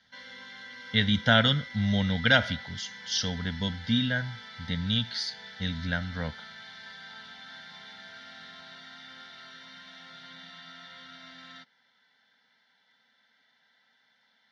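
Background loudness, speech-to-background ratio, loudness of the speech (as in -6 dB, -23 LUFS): -43.5 LUFS, 16.0 dB, -27.5 LUFS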